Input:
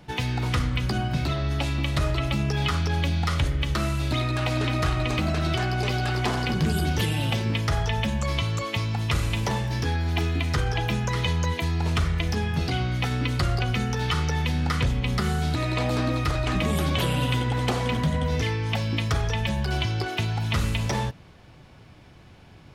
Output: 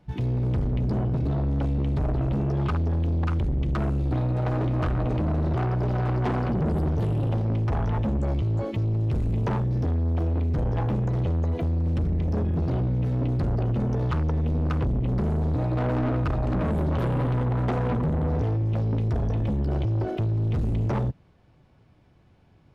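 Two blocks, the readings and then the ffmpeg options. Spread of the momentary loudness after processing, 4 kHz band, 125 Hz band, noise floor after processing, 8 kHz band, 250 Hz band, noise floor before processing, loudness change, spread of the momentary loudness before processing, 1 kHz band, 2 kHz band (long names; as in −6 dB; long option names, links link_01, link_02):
1 LU, below −15 dB, +1.5 dB, −57 dBFS, below −20 dB, +1.0 dB, −49 dBFS, 0.0 dB, 2 LU, −4.5 dB, −12.5 dB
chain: -af "afwtdn=0.0562,tiltshelf=frequency=1400:gain=4.5,asoftclip=type=tanh:threshold=-26dB,volume=4dB"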